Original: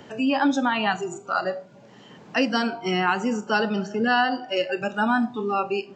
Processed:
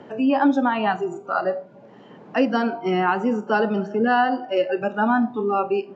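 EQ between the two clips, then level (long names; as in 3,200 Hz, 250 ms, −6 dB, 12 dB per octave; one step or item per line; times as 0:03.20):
resonant band-pass 460 Hz, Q 0.51
+4.5 dB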